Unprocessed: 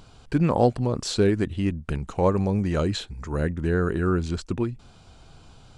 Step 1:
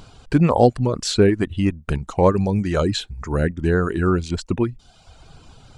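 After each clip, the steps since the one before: reverb removal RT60 0.85 s; gain +6 dB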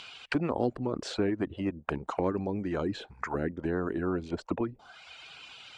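auto-wah 310–3000 Hz, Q 2.7, down, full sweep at -18 dBFS; spectral compressor 2:1; gain -6.5 dB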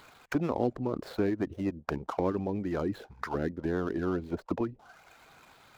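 median filter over 15 samples

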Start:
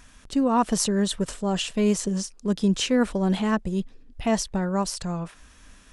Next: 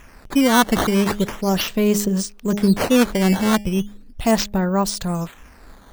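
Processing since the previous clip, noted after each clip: de-hum 205.4 Hz, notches 4; decimation with a swept rate 10×, swing 160% 0.37 Hz; gain +6 dB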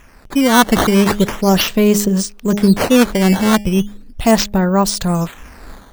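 AGC gain up to 10 dB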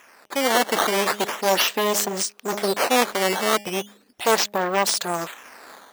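one-sided fold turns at -15.5 dBFS; HPF 500 Hz 12 dB/oct; gain -1 dB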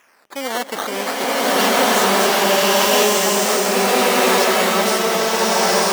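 bloom reverb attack 1.35 s, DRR -10.5 dB; gain -4 dB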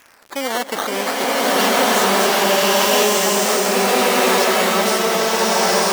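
in parallel at +0.5 dB: compressor, threshold -24 dBFS, peak gain reduction 12.5 dB; on the sum: crackle 78/s -28 dBFS; gain -2.5 dB

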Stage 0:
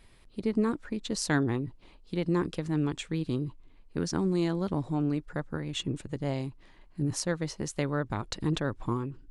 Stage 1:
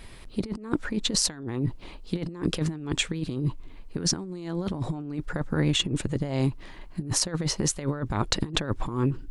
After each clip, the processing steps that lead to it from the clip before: negative-ratio compressor -34 dBFS, ratio -0.5; gain +7.5 dB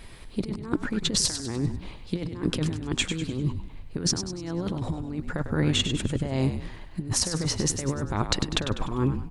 frequency-shifting echo 99 ms, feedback 45%, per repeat -51 Hz, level -8.5 dB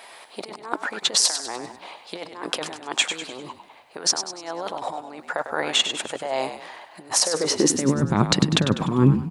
high-pass sweep 720 Hz -> 160 Hz, 7.14–8.04; gain +5.5 dB

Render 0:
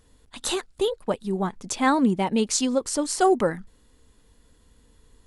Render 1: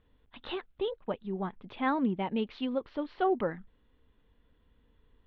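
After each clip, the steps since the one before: steep low-pass 3500 Hz 48 dB/oct; gain -8.5 dB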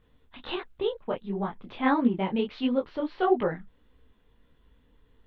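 detuned doubles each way 52 cents; gain +8 dB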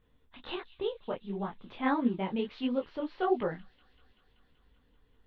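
thin delay 0.192 s, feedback 78%, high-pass 3300 Hz, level -15 dB; gain -5 dB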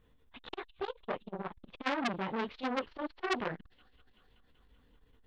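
core saturation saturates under 2800 Hz; gain +2.5 dB

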